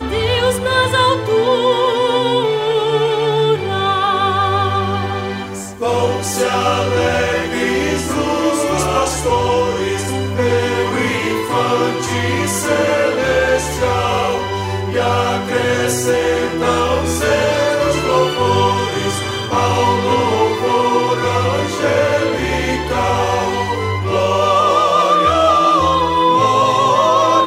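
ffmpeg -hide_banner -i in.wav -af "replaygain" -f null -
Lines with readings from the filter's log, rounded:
track_gain = -2.7 dB
track_peak = 0.604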